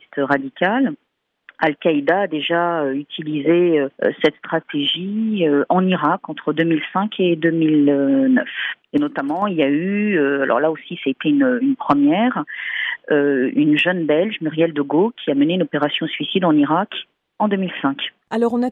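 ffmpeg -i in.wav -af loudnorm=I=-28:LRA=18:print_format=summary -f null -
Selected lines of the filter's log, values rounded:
Input Integrated:    -18.6 LUFS
Input True Peak:      -2.4 dBTP
Input LRA:             2.1 LU
Input Threshold:     -28.7 LUFS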